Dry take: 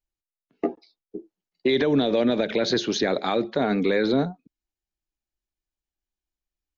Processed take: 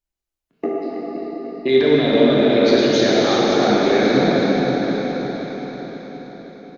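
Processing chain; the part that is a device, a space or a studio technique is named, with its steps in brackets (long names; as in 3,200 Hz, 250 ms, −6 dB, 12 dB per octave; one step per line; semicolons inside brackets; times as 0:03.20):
feedback delay that plays each chunk backwards 263 ms, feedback 71%, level −9 dB
0:01.72–0:02.86: low-pass filter 5,500 Hz 12 dB per octave
cave (single-tap delay 325 ms −8.5 dB; convolution reverb RT60 4.6 s, pre-delay 20 ms, DRR −5.5 dB)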